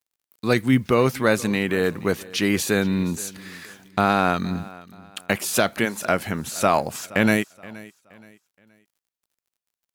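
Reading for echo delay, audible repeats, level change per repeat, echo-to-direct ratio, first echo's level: 0.473 s, 2, -9.5 dB, -20.0 dB, -20.5 dB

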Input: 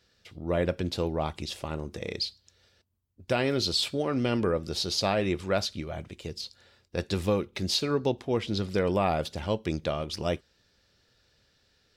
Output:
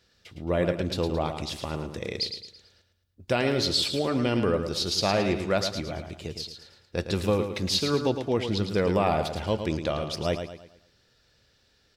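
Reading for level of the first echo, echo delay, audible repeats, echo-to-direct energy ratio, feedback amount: -8.0 dB, 0.11 s, 4, -7.0 dB, 40%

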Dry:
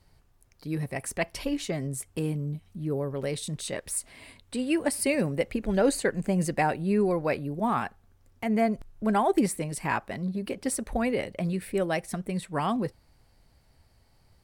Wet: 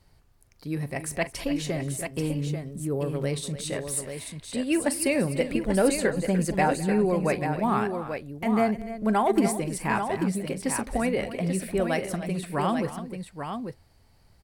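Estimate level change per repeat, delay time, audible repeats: no steady repeat, 42 ms, 4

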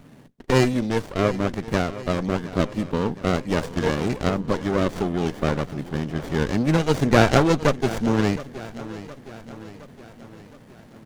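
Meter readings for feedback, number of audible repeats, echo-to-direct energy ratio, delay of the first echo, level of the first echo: 55%, 4, -14.5 dB, 0.716 s, -16.0 dB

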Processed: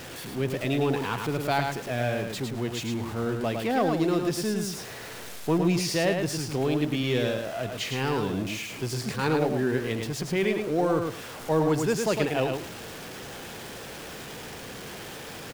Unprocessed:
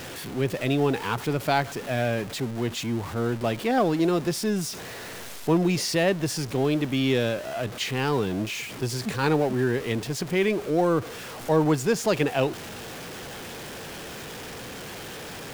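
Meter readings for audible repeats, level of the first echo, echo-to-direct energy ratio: 2, -5.0 dB, -5.0 dB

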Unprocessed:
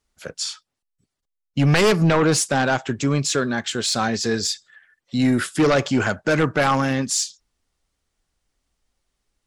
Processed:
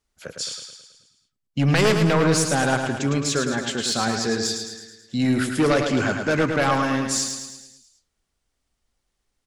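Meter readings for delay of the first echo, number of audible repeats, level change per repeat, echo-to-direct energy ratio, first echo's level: 0.108 s, 6, -5.0 dB, -4.5 dB, -6.0 dB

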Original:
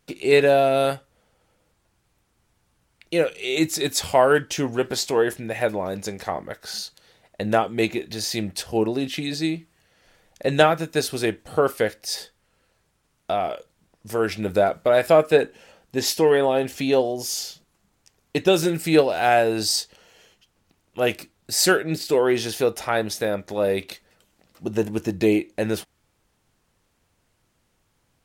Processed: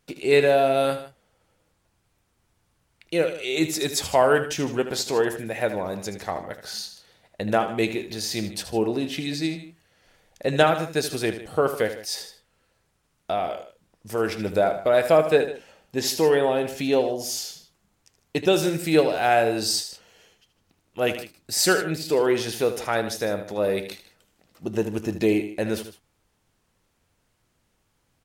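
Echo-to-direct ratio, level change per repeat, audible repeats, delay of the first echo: -10.0 dB, -5.0 dB, 2, 77 ms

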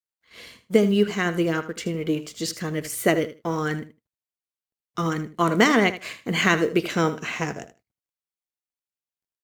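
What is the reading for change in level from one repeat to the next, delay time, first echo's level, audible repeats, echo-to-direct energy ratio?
-16.0 dB, 78 ms, -13.5 dB, 2, -13.5 dB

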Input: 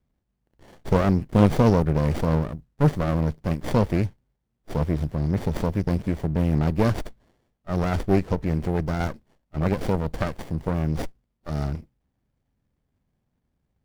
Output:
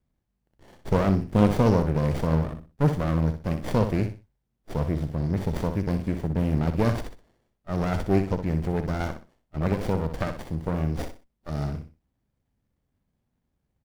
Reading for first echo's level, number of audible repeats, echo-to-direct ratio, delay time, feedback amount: -8.5 dB, 3, -8.0 dB, 62 ms, 26%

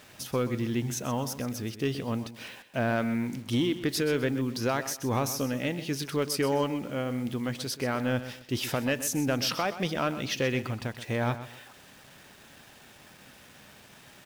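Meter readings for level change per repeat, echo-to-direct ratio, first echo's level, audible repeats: -11.0 dB, -12.5 dB, -13.0 dB, 2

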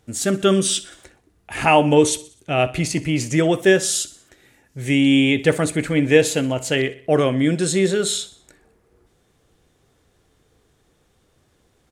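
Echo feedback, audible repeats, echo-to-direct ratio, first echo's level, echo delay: 50%, 3, -17.0 dB, -18.0 dB, 62 ms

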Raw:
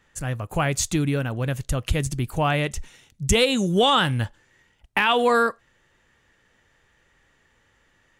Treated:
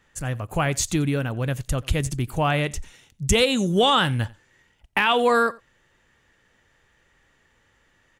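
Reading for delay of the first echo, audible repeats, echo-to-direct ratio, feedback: 89 ms, 1, -23.0 dB, no steady repeat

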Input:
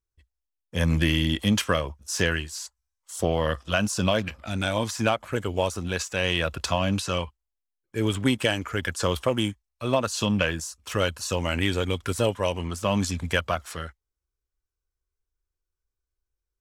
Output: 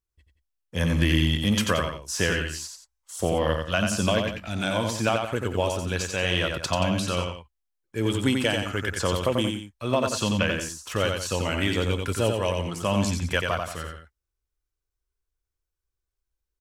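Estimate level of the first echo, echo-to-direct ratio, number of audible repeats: -4.5 dB, -4.0 dB, 2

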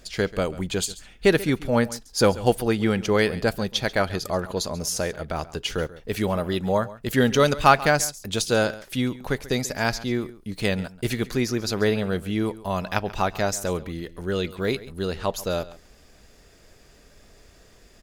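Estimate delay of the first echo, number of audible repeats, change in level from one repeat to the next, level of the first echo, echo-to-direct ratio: 0.137 s, 1, no steady repeat, -18.0 dB, -18.0 dB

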